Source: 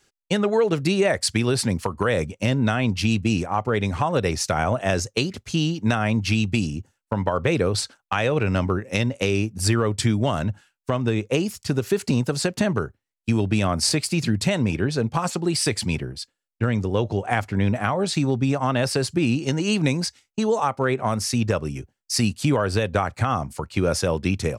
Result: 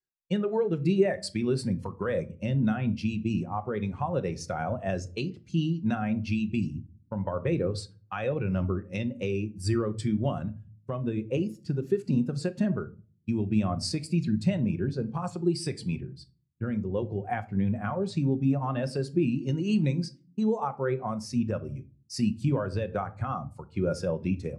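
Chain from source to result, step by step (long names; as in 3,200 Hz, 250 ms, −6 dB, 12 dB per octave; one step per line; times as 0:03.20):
rectangular room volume 880 cubic metres, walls furnished, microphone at 0.94 metres
every bin expanded away from the loudest bin 1.5 to 1
level −4 dB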